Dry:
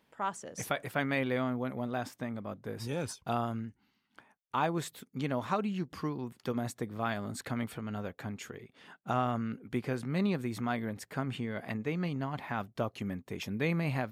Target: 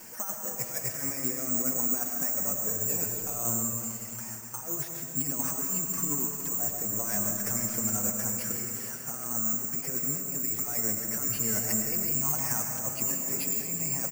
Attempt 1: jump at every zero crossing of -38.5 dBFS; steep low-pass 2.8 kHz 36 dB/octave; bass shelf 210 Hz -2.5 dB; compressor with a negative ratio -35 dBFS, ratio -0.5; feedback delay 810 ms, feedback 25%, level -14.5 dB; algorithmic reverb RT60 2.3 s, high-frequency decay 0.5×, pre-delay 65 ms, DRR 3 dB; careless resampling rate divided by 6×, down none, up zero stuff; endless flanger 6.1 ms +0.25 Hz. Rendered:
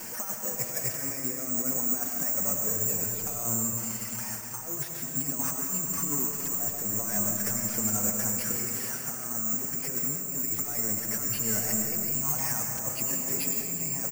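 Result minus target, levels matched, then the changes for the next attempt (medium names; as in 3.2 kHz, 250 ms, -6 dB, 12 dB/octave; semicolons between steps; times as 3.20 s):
jump at every zero crossing: distortion +7 dB
change: jump at every zero crossing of -46 dBFS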